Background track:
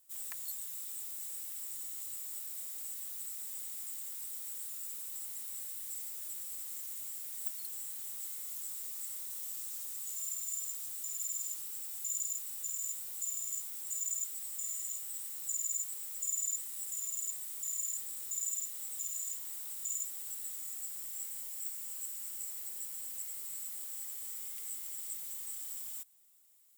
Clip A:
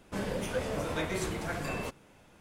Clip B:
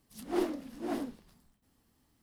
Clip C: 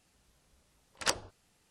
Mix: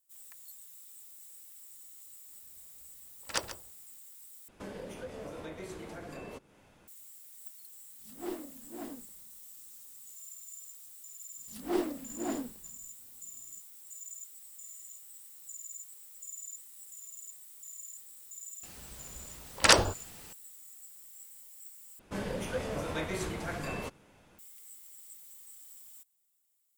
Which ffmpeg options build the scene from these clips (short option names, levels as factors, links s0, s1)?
-filter_complex "[3:a]asplit=2[s0][s1];[1:a]asplit=2[s2][s3];[2:a]asplit=2[s4][s5];[0:a]volume=0.335[s6];[s0]aecho=1:1:138:0.237[s7];[s2]acrossover=split=260|550[s8][s9][s10];[s8]acompressor=threshold=0.00316:ratio=4[s11];[s9]acompressor=threshold=0.00891:ratio=4[s12];[s10]acompressor=threshold=0.00398:ratio=4[s13];[s11][s12][s13]amix=inputs=3:normalize=0[s14];[s1]alimiter=level_in=15:limit=0.891:release=50:level=0:latency=1[s15];[s6]asplit=3[s16][s17][s18];[s16]atrim=end=4.484[s19];[s14]atrim=end=2.4,asetpts=PTS-STARTPTS,volume=0.75[s20];[s17]atrim=start=6.876:end=21.994[s21];[s3]atrim=end=2.4,asetpts=PTS-STARTPTS,volume=0.794[s22];[s18]atrim=start=24.386[s23];[s7]atrim=end=1.7,asetpts=PTS-STARTPTS,volume=0.708,afade=t=in:d=0.004:c=hsin,afade=t=out:st=1.696:d=0.004:c=hsin,adelay=2280[s24];[s4]atrim=end=2.22,asetpts=PTS-STARTPTS,volume=0.398,afade=t=in:d=0.004:c=hsin,afade=t=out:st=2.216:d=0.004:c=hsin,adelay=7900[s25];[s5]atrim=end=2.22,asetpts=PTS-STARTPTS,afade=t=in:d=0.004:c=hsin,afade=t=out:st=2.216:d=0.004:c=hsin,adelay=11370[s26];[s15]atrim=end=1.7,asetpts=PTS-STARTPTS,volume=0.531,afade=t=in:d=0.004:c=hsin,afade=t=out:st=1.696:d=0.004:c=hsin,adelay=18630[s27];[s19][s20]acrossfade=d=0.004:c1=hsin:c2=hsin[s28];[s28][s21]acrossfade=d=0.004:c1=hsin:c2=hsin[s29];[s29][s22]acrossfade=d=0.004:c1=hsin:c2=hsin[s30];[s30][s23]acrossfade=d=0.004:c1=hsin:c2=hsin[s31];[s31][s24][s25][s26][s27]amix=inputs=5:normalize=0"